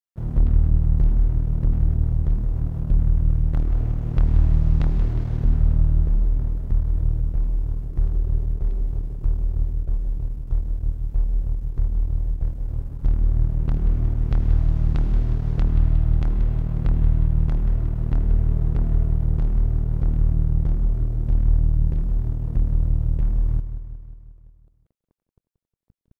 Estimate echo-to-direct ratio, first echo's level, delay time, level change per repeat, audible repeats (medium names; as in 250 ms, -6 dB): -9.5 dB, -11.5 dB, 180 ms, -4.5 dB, 6